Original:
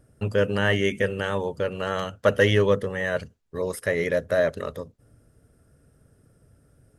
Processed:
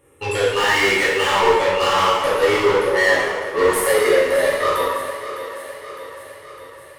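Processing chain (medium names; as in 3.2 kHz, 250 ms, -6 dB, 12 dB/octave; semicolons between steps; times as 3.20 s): spectral noise reduction 16 dB; 2.08–4.40 s: peaking EQ 3.3 kHz -10.5 dB 1.6 oct; compression, threshold -33 dBFS, peak gain reduction 16.5 dB; static phaser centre 1 kHz, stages 8; overdrive pedal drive 34 dB, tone 6.1 kHz, clips at -17 dBFS; thinning echo 607 ms, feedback 61%, high-pass 220 Hz, level -12 dB; plate-style reverb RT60 1.4 s, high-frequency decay 0.75×, DRR -8 dB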